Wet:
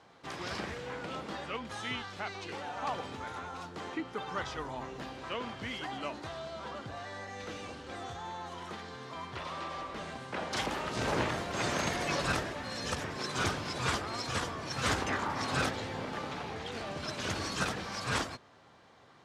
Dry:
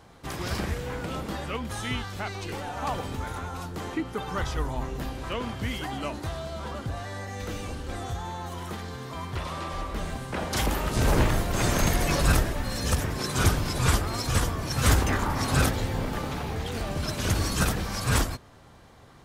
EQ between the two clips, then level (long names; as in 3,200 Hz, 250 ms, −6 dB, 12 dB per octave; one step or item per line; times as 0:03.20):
band-pass filter 100–5,600 Hz
low-shelf EQ 270 Hz −9 dB
−3.5 dB